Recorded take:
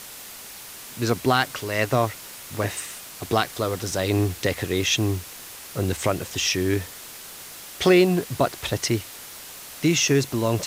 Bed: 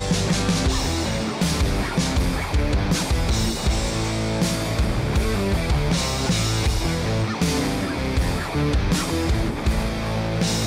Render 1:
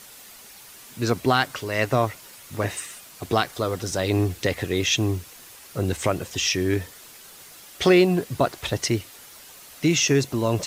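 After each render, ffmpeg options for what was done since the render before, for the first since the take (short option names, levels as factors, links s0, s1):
-af "afftdn=nr=7:nf=-41"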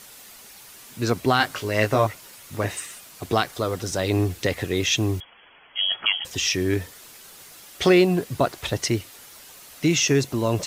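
-filter_complex "[0:a]asettb=1/sr,asplit=3[s0][s1][s2];[s0]atrim=end=1.384[s3];[s1]atrim=start=1.38:end=2.07,asetpts=PTS-STARTPTS,afade=t=in:d=0.004:c=qsin,afade=t=out:st=0.686:d=0.004:c=qsin,asplit=2[s4][s5];[s5]adelay=19,volume=0.631[s6];[s4][s6]amix=inputs=2:normalize=0,atrim=end_sample=30429[s7];[s2]atrim=start=2.066[s8];[s3][s7]acrossfade=d=0.004:c1=hsin:c2=qsin[s9];[s9][s8]acrossfade=d=0.004:c1=qsin:c2=hsin,asettb=1/sr,asplit=3[s10][s11][s12];[s10]atrim=end=5.204[s13];[s11]atrim=start=5.2:end=6.25,asetpts=PTS-STARTPTS,afade=t=in:d=0.004:c=qsin,afade=t=out:st=1.046:d=0.004:c=qsin,lowpass=f=2900:t=q:w=0.5098,lowpass=f=2900:t=q:w=0.6013,lowpass=f=2900:t=q:w=0.9,lowpass=f=2900:t=q:w=2.563,afreqshift=-3400[s14];[s12]atrim=start=6.246[s15];[s13][s14]acrossfade=d=0.004:c1=hsin:c2=qsin[s16];[s16][s15]acrossfade=d=0.004:c1=qsin:c2=hsin"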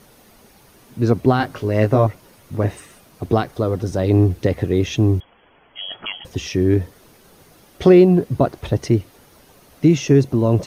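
-af "tiltshelf=f=970:g=9,bandreject=f=7500:w=7.4"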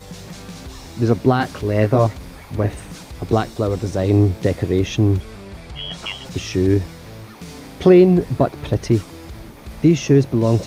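-filter_complex "[1:a]volume=0.188[s0];[0:a][s0]amix=inputs=2:normalize=0"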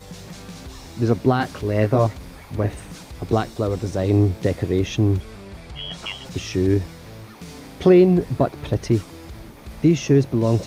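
-af "volume=0.75"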